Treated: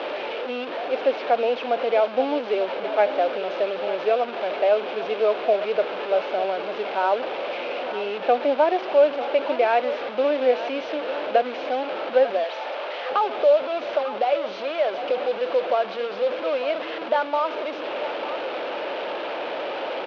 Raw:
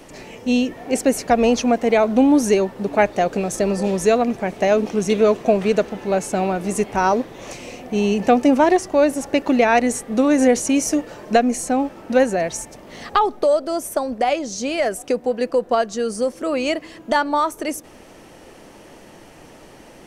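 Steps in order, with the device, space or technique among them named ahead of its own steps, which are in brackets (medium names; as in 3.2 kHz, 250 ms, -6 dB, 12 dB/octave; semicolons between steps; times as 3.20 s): digital answering machine (band-pass 300–3100 Hz; one-bit delta coder 32 kbps, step -18.5 dBFS; cabinet simulation 460–3200 Hz, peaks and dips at 560 Hz +6 dB, 1.1 kHz -3 dB, 1.9 kHz -8 dB); delay 896 ms -13 dB; 12.44–13.11 s: high-pass 510 Hz 12 dB/octave; trim -3.5 dB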